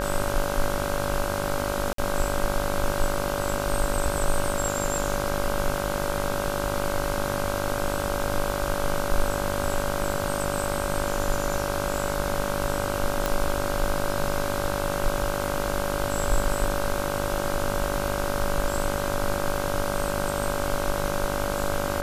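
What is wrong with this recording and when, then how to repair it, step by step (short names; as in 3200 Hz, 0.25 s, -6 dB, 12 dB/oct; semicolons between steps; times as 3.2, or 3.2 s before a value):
buzz 50 Hz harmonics 32 -30 dBFS
tone 570 Hz -30 dBFS
1.93–1.98 gap 53 ms
13.26 pop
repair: de-click; de-hum 50 Hz, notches 32; notch 570 Hz, Q 30; interpolate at 1.93, 53 ms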